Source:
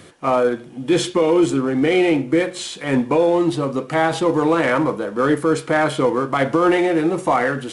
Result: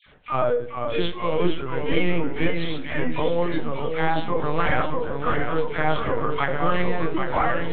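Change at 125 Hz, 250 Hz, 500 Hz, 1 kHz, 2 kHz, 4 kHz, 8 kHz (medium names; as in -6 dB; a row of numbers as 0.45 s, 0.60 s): -2.0 dB, -10.0 dB, -7.0 dB, -4.0 dB, -4.0 dB, -4.5 dB, under -40 dB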